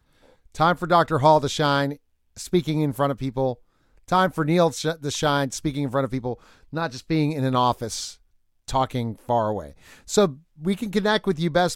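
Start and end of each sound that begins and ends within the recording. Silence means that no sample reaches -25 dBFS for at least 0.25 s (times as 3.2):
0.59–1.92
2.4–3.52
4.12–6.33
6.74–8.06
8.69–9.61
10.11–10.29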